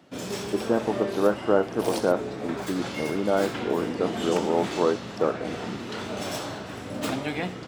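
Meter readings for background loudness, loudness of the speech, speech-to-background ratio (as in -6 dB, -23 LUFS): -32.5 LUFS, -27.0 LUFS, 5.5 dB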